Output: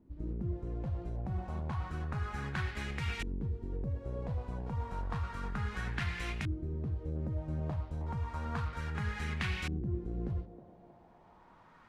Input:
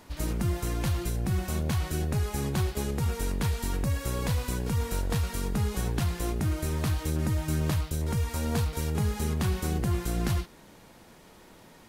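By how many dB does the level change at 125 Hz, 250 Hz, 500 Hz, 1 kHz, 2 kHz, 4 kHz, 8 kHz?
-8.0, -9.5, -10.0, -5.0, -1.5, -9.0, -20.0 dB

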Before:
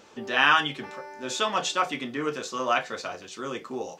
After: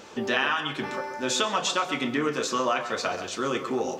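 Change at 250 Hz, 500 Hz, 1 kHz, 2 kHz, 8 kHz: +4.5, +3.0, -1.5, -2.5, +4.0 dB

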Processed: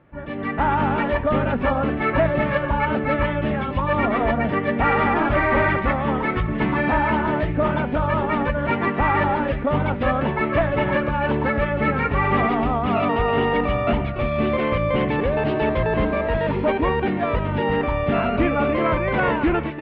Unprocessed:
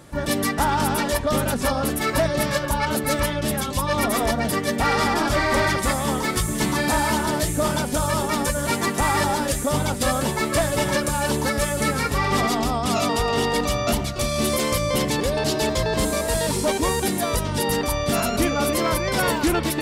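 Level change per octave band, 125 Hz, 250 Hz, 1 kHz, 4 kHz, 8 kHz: +2.0 dB, +2.0 dB, +2.0 dB, -10.0 dB, under -40 dB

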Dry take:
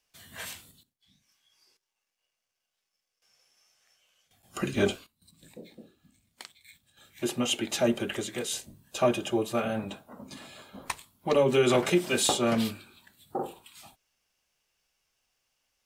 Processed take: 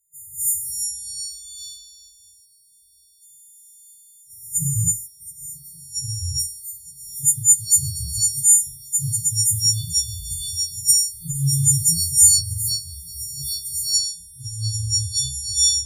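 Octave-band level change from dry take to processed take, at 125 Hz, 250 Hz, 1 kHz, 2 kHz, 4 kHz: +13.5 dB, n/a, under -40 dB, under -40 dB, +12.0 dB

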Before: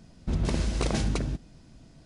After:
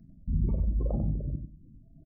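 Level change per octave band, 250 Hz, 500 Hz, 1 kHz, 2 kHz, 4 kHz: -3.5 dB, -7.0 dB, -14.0 dB, under -40 dB, under -40 dB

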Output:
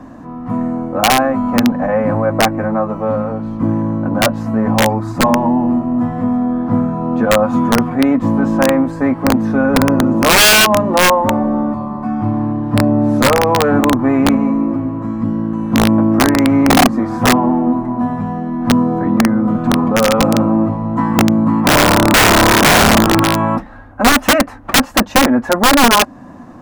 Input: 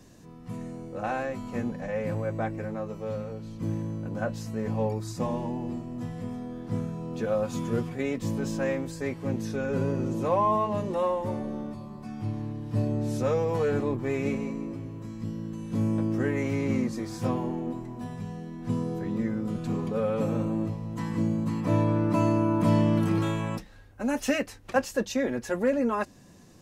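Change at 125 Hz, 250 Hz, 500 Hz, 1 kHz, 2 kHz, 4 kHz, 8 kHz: +10.0, +16.0, +13.0, +18.5, +22.5, +28.5, +25.5 dB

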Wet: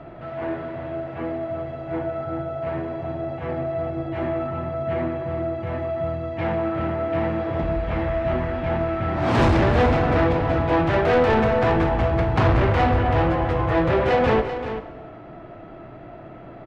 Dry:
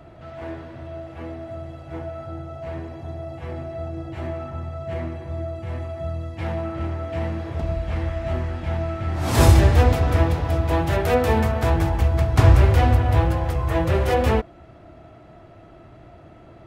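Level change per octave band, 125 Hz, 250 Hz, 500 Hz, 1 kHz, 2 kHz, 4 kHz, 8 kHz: -4.0 dB, +3.0 dB, +4.0 dB, +3.5 dB, +3.5 dB, -1.0 dB, under -10 dB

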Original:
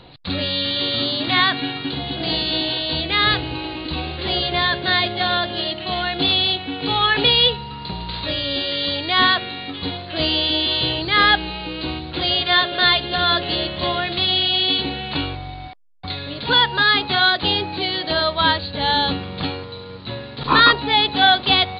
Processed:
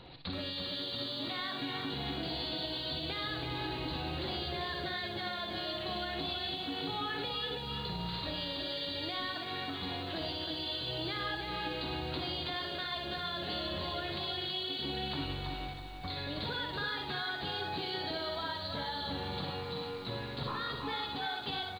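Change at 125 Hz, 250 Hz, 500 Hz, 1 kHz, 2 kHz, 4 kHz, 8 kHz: -12.5 dB, -14.0 dB, -14.0 dB, -18.0 dB, -19.5 dB, -18.0 dB, n/a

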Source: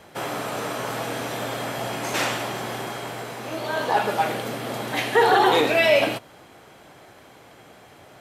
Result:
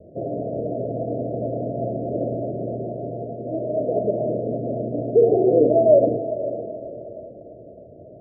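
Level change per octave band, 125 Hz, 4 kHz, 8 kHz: +6.0 dB, under -40 dB, under -40 dB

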